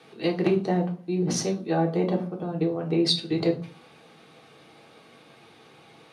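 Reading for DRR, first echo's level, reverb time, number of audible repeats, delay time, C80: 0.0 dB, no echo audible, 0.40 s, no echo audible, no echo audible, 17.5 dB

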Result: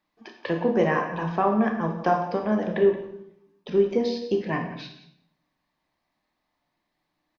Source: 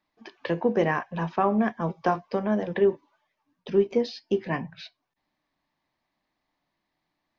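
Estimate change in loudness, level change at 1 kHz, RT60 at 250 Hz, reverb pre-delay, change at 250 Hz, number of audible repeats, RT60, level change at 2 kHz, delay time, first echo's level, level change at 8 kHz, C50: +1.5 dB, +2.5 dB, 0.95 s, 24 ms, +2.0 dB, 1, 0.70 s, +1.5 dB, 174 ms, −15.0 dB, can't be measured, 6.5 dB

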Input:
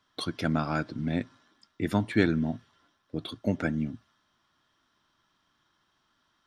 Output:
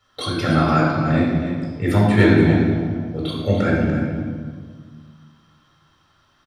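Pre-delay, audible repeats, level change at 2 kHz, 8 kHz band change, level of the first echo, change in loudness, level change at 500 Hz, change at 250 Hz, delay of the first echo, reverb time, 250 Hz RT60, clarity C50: 4 ms, 1, +11.0 dB, can't be measured, −9.0 dB, +11.0 dB, +13.0 dB, +11.5 dB, 292 ms, 1.8 s, 2.1 s, −0.5 dB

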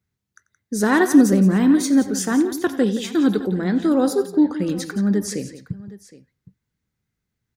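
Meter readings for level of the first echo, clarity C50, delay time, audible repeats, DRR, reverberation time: −18.5 dB, no reverb audible, 90 ms, 3, no reverb audible, no reverb audible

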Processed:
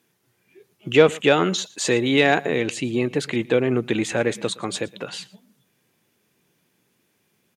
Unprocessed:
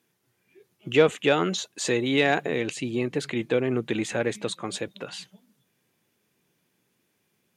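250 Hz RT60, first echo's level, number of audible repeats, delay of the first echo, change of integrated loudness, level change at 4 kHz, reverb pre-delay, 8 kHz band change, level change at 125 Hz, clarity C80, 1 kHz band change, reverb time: no reverb audible, −22.5 dB, 1, 116 ms, +4.5 dB, +4.5 dB, no reverb audible, +4.5 dB, +4.5 dB, no reverb audible, +4.5 dB, no reverb audible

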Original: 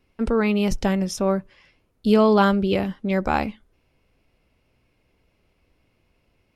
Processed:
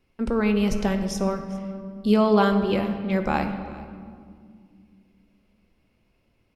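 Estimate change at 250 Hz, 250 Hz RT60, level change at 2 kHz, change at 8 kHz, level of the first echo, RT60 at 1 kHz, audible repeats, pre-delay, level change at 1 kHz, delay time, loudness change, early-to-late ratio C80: −1.0 dB, 3.4 s, −2.5 dB, can't be measured, −21.5 dB, 1.9 s, 1, 5 ms, −2.5 dB, 402 ms, −2.5 dB, 9.5 dB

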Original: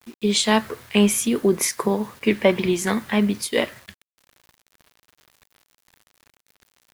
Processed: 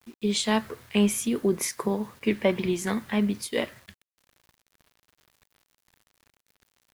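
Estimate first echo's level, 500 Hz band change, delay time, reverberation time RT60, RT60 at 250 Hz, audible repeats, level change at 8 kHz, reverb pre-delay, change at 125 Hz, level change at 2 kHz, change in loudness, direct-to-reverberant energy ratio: no echo audible, −6.0 dB, no echo audible, no reverb audible, no reverb audible, no echo audible, −7.0 dB, no reverb audible, −4.5 dB, −7.0 dB, −5.5 dB, no reverb audible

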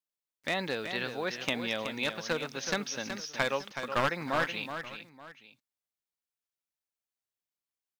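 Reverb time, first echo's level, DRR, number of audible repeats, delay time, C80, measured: no reverb audible, −8.5 dB, no reverb audible, 2, 373 ms, no reverb audible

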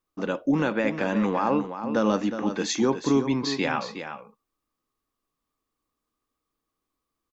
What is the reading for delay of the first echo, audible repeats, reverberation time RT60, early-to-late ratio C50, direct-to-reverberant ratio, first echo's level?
364 ms, 1, no reverb audible, no reverb audible, no reverb audible, −9.5 dB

